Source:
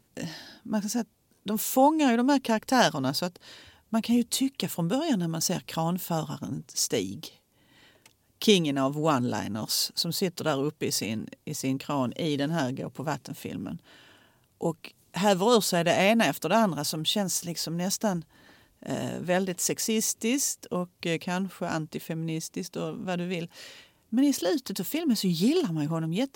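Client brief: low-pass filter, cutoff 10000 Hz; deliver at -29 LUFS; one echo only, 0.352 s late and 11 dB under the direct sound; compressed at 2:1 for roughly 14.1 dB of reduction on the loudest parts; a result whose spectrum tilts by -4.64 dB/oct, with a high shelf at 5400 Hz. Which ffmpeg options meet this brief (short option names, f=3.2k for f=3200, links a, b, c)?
-af "lowpass=10k,highshelf=f=5.4k:g=-7,acompressor=threshold=-42dB:ratio=2,aecho=1:1:352:0.282,volume=9.5dB"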